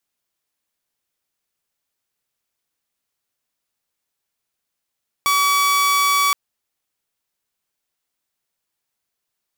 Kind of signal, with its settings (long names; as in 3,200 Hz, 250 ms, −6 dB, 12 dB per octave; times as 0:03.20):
tone saw 1,140 Hz −12 dBFS 1.07 s